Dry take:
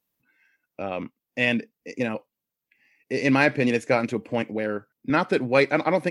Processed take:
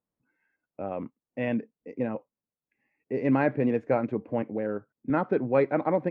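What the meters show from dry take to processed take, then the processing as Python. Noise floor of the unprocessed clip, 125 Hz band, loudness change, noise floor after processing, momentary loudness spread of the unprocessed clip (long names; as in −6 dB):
below −85 dBFS, −2.5 dB, −4.0 dB, below −85 dBFS, 14 LU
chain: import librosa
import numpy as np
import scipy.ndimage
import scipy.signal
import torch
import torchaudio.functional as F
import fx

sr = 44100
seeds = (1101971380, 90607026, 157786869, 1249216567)

y = scipy.signal.sosfilt(scipy.signal.butter(2, 1100.0, 'lowpass', fs=sr, output='sos'), x)
y = y * librosa.db_to_amplitude(-2.5)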